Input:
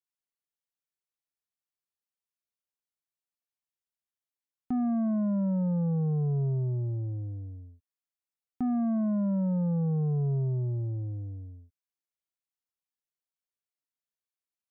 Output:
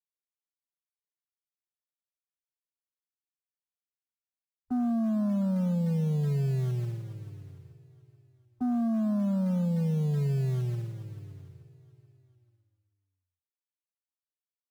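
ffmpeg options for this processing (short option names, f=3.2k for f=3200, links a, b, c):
-filter_complex "[0:a]afwtdn=0.01,agate=range=-8dB:threshold=-32dB:ratio=16:detection=peak,acrossover=split=160|410[a][b][c];[a]acrusher=bits=5:mode=log:mix=0:aa=0.000001[d];[d][b][c]amix=inputs=3:normalize=0,aecho=1:1:435|870|1305|1740:0.112|0.0595|0.0315|0.0167"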